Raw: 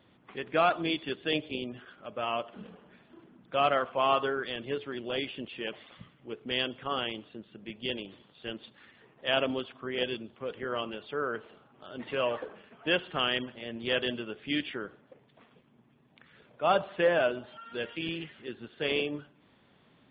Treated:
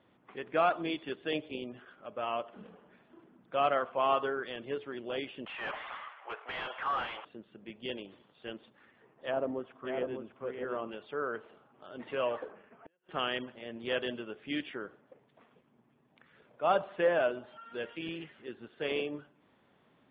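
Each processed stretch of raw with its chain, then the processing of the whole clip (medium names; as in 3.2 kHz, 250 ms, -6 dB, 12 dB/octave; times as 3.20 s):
5.46–7.25 s: high-pass 810 Hz 24 dB/octave + overdrive pedal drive 33 dB, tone 1.1 kHz, clips at -17.5 dBFS + distance through air 210 m
8.61–10.89 s: low-pass 2.3 kHz 6 dB/octave + low-pass that closes with the level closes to 950 Hz, closed at -26.5 dBFS + delay 601 ms -6 dB
12.51–13.09 s: low-pass 2.6 kHz 24 dB/octave + compression 8:1, threshold -36 dBFS + inverted gate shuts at -35 dBFS, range -35 dB
whole clip: low-pass 1.5 kHz 6 dB/octave; bass shelf 250 Hz -8.5 dB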